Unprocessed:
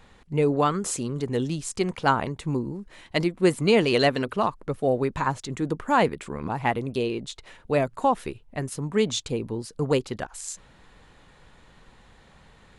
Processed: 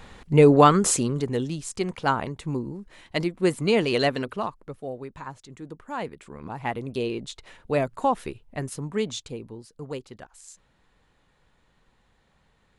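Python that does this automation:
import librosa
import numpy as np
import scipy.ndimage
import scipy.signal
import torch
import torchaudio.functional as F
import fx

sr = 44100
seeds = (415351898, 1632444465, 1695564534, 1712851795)

y = fx.gain(x, sr, db=fx.line((0.88, 7.5), (1.46, -2.0), (4.19, -2.0), (4.97, -12.5), (5.89, -12.5), (7.08, -1.0), (8.69, -1.0), (9.73, -11.5)))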